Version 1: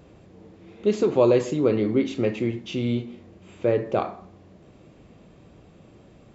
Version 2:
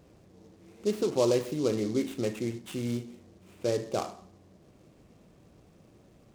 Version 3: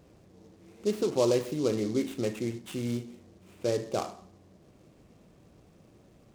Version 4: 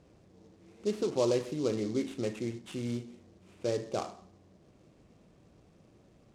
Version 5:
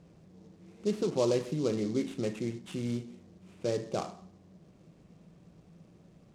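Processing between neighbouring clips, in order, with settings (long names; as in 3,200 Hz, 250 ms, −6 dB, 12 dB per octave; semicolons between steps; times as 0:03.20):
short delay modulated by noise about 4,700 Hz, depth 0.044 ms; level −7 dB
no processing that can be heard
low-pass filter 8,900 Hz 12 dB per octave; level −3 dB
parametric band 170 Hz +11.5 dB 0.35 octaves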